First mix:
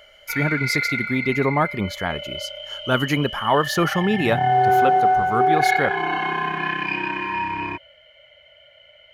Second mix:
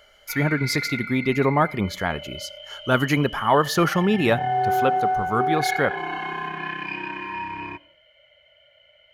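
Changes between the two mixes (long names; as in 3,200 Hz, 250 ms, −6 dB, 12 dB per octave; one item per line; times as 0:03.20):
background −6.5 dB
reverb: on, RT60 0.40 s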